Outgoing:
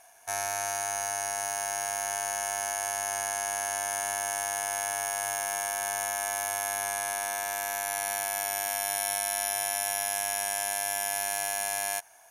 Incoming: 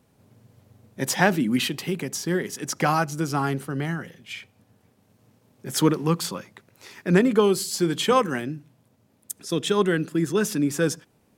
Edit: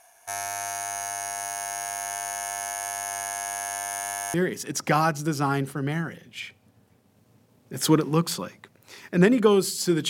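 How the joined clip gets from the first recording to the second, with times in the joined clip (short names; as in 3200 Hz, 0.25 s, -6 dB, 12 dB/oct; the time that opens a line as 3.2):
outgoing
4.34 switch to incoming from 2.27 s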